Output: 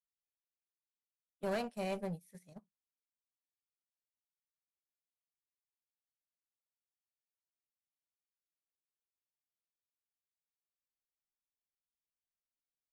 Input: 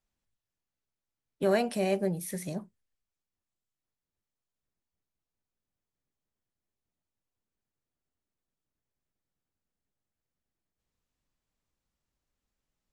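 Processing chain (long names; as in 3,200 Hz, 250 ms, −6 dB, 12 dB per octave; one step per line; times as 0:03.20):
asymmetric clip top −29 dBFS
noise gate −32 dBFS, range −20 dB
parametric band 340 Hz −13 dB 0.24 octaves
level −7 dB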